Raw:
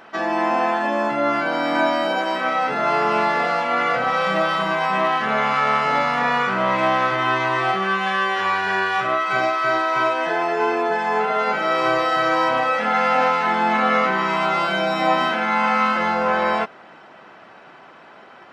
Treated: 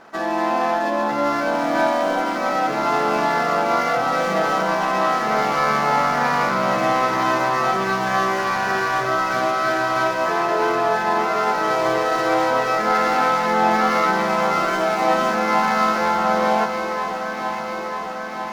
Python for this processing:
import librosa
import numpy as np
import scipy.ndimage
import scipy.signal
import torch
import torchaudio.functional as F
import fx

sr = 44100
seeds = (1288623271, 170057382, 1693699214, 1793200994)

p1 = scipy.ndimage.median_filter(x, 15, mode='constant')
y = p1 + fx.echo_alternate(p1, sr, ms=473, hz=1200.0, feedback_pct=84, wet_db=-6.0, dry=0)